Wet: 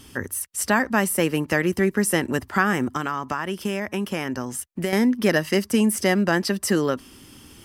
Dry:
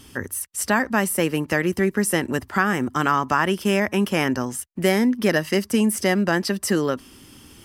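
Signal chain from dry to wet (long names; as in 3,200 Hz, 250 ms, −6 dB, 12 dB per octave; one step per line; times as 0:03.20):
0:02.91–0:04.93: downward compressor 5 to 1, threshold −23 dBFS, peak gain reduction 9 dB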